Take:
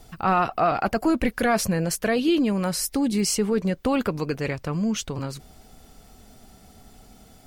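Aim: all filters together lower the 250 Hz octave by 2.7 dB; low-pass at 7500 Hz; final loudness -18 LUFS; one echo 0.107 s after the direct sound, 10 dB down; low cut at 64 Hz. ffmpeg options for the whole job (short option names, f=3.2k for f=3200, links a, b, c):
-af "highpass=64,lowpass=7.5k,equalizer=f=250:t=o:g=-3.5,aecho=1:1:107:0.316,volume=7dB"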